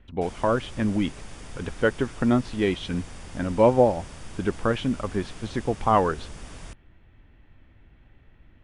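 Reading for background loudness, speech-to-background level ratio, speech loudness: −43.0 LKFS, 18.0 dB, −25.0 LKFS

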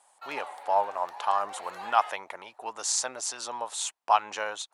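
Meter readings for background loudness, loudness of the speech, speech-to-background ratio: −42.0 LKFS, −29.5 LKFS, 12.5 dB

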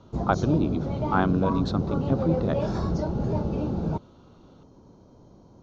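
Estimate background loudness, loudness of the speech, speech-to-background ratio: −28.5 LKFS, −27.5 LKFS, 1.0 dB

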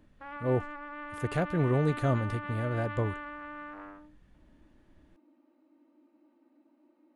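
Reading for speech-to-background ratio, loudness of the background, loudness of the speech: 9.5 dB, −40.5 LKFS, −31.0 LKFS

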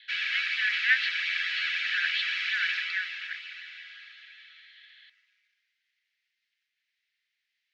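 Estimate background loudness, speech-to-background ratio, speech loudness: −28.5 LKFS, −3.0 dB, −31.5 LKFS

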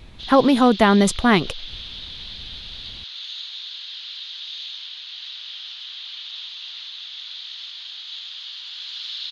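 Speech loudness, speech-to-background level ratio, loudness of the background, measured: −17.0 LKFS, 15.5 dB, −32.5 LKFS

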